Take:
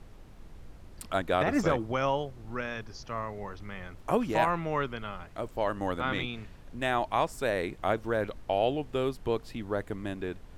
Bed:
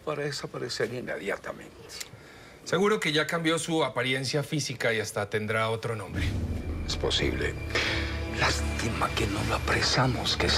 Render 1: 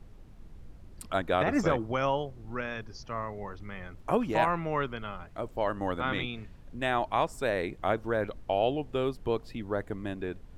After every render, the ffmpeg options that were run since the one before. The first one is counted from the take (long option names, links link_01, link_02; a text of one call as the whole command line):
ffmpeg -i in.wav -af "afftdn=noise_reduction=6:noise_floor=-50" out.wav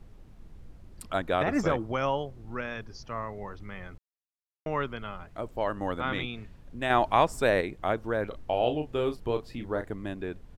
ffmpeg -i in.wav -filter_complex "[0:a]asettb=1/sr,asplit=3[link_01][link_02][link_03];[link_01]atrim=end=6.904[link_04];[link_02]atrim=start=6.9:end=7.61,asetpts=PTS-STARTPTS,afade=type=in:duration=0.004:curve=qsin,afade=type=out:start_time=0.706:duration=0.004:curve=qsin,acontrast=33[link_05];[link_03]atrim=start=7.606[link_06];[link_04][link_05]acrossfade=duration=0.004:curve1=hsin:curve2=qsin[link_07];[link_07][link_06]acrossfade=duration=0.004:curve1=qsin:curve2=hsin,asplit=3[link_08][link_09][link_10];[link_08]afade=type=out:start_time=8.31:duration=0.02[link_11];[link_09]asplit=2[link_12][link_13];[link_13]adelay=33,volume=-7.5dB[link_14];[link_12][link_14]amix=inputs=2:normalize=0,afade=type=in:start_time=8.31:duration=0.02,afade=type=out:start_time=9.86:duration=0.02[link_15];[link_10]afade=type=in:start_time=9.86:duration=0.02[link_16];[link_11][link_15][link_16]amix=inputs=3:normalize=0,asplit=3[link_17][link_18][link_19];[link_17]atrim=end=3.98,asetpts=PTS-STARTPTS,afade=type=out:start_time=3.976:duration=0.004:curve=hsin[link_20];[link_18]atrim=start=3.98:end=4.66,asetpts=PTS-STARTPTS,volume=0[link_21];[link_19]atrim=start=4.66,asetpts=PTS-STARTPTS,afade=type=in:duration=0.004:curve=hsin[link_22];[link_20][link_21][link_22]concat=n=3:v=0:a=1" out.wav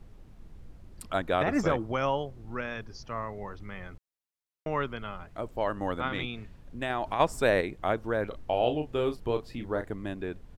ffmpeg -i in.wav -filter_complex "[0:a]asplit=3[link_01][link_02][link_03];[link_01]afade=type=out:start_time=6.07:duration=0.02[link_04];[link_02]acompressor=threshold=-26dB:ratio=6:attack=3.2:release=140:knee=1:detection=peak,afade=type=in:start_time=6.07:duration=0.02,afade=type=out:start_time=7.19:duration=0.02[link_05];[link_03]afade=type=in:start_time=7.19:duration=0.02[link_06];[link_04][link_05][link_06]amix=inputs=3:normalize=0" out.wav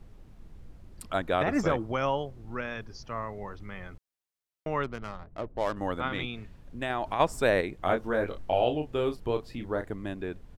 ffmpeg -i in.wav -filter_complex "[0:a]asplit=3[link_01][link_02][link_03];[link_01]afade=type=out:start_time=4.83:duration=0.02[link_04];[link_02]adynamicsmooth=sensitivity=6.5:basefreq=500,afade=type=in:start_time=4.83:duration=0.02,afade=type=out:start_time=5.75:duration=0.02[link_05];[link_03]afade=type=in:start_time=5.75:duration=0.02[link_06];[link_04][link_05][link_06]amix=inputs=3:normalize=0,asettb=1/sr,asplit=3[link_07][link_08][link_09];[link_07]atrim=end=7.834[link_10];[link_08]atrim=start=7.83:end=8.64,asetpts=PTS-STARTPTS,afade=type=in:duration=0.004:curve=qsin,afade=type=out:start_time=0.806:duration=0.004:curve=qsin,asplit=2[link_11][link_12];[link_12]adelay=22,volume=-3.5dB[link_13];[link_11][link_13]amix=inputs=2:normalize=0,atrim=end_sample=35721[link_14];[link_09]atrim=start=8.636[link_15];[link_10][link_14]acrossfade=duration=0.004:curve1=hsin:curve2=qsin[link_16];[link_16][link_15]acrossfade=duration=0.004:curve1=qsin:curve2=hsin" out.wav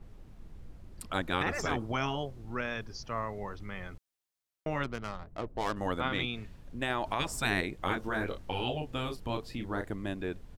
ffmpeg -i in.wav -af "afftfilt=real='re*lt(hypot(re,im),0.2)':imag='im*lt(hypot(re,im),0.2)':win_size=1024:overlap=0.75,adynamicequalizer=threshold=0.00398:dfrequency=2800:dqfactor=0.7:tfrequency=2800:tqfactor=0.7:attack=5:release=100:ratio=0.375:range=2:mode=boostabove:tftype=highshelf" out.wav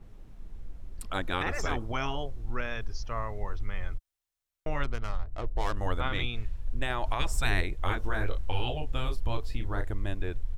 ffmpeg -i in.wav -af "asubboost=boost=11:cutoff=59,bandreject=frequency=4700:width=25" out.wav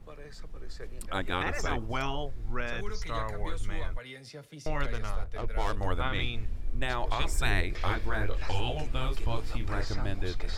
ffmpeg -i in.wav -i bed.wav -filter_complex "[1:a]volume=-17.5dB[link_01];[0:a][link_01]amix=inputs=2:normalize=0" out.wav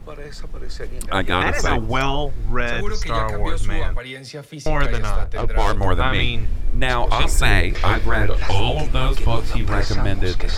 ffmpeg -i in.wav -af "volume=12dB,alimiter=limit=-2dB:level=0:latency=1" out.wav